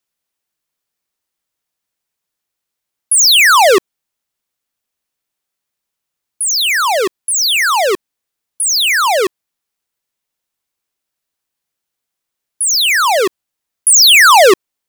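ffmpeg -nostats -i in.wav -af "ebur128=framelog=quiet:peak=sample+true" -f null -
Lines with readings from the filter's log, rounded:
Integrated loudness:
  I:          -9.4 LUFS
  Threshold: -19.6 LUFS
Loudness range:
  LRA:         7.8 LU
  Threshold: -34.2 LUFS
  LRA low:   -19.0 LUFS
  LRA high:  -11.3 LUFS
Sample peak:
  Peak:       -5.3 dBFS
True peak:
  Peak:       -3.2 dBFS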